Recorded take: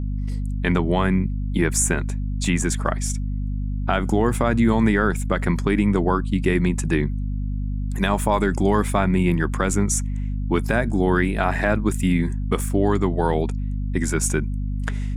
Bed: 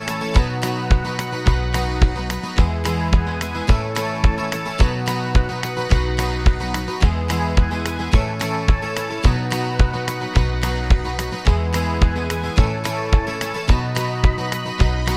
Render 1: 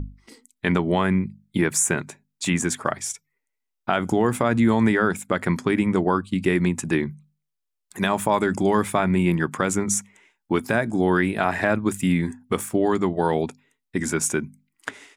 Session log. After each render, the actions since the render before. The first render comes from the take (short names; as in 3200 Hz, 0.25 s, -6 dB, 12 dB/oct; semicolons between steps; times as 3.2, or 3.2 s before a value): notches 50/100/150/200/250 Hz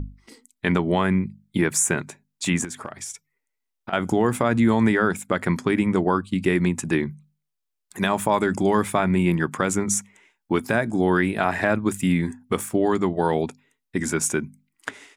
2.64–3.93 compressor 12:1, threshold -29 dBFS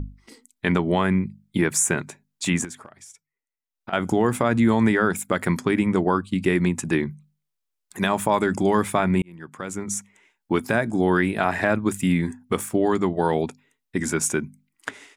2.6–3.96 dip -11 dB, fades 0.27 s; 5.13–5.6 high shelf 8800 Hz +10 dB; 9.22–10.52 fade in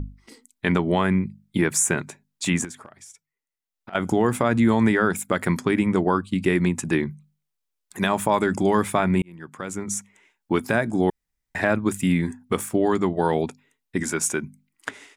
2.71–3.95 compressor, threshold -35 dBFS; 11.1–11.55 room tone; 14.03–14.43 low shelf 250 Hz -7 dB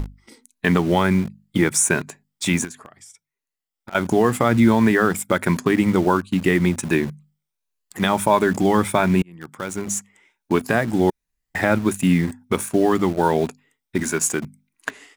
moving spectral ripple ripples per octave 1.5, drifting +1.4 Hz, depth 6 dB; in parallel at -9 dB: bit-crush 5-bit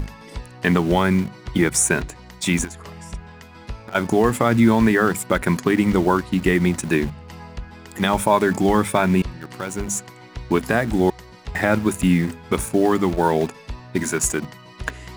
add bed -18 dB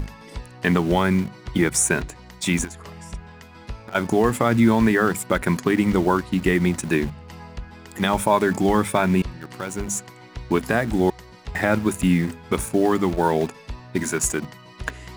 gain -1.5 dB